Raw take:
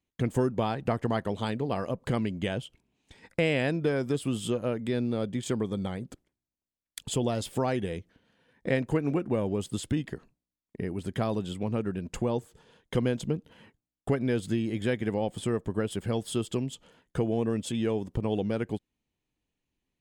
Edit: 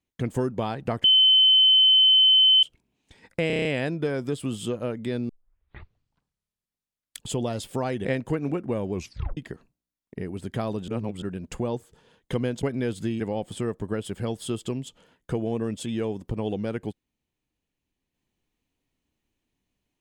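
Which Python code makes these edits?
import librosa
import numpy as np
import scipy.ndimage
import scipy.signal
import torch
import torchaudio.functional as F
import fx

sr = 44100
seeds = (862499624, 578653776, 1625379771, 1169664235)

y = fx.edit(x, sr, fx.bleep(start_s=1.04, length_s=1.59, hz=3060.0, db=-13.5),
    fx.stutter(start_s=3.47, slice_s=0.03, count=7),
    fx.tape_start(start_s=5.11, length_s=1.91),
    fx.cut(start_s=7.87, length_s=0.8),
    fx.tape_stop(start_s=9.55, length_s=0.44),
    fx.reverse_span(start_s=11.5, length_s=0.34),
    fx.cut(start_s=13.25, length_s=0.85),
    fx.cut(start_s=14.67, length_s=0.39), tone=tone)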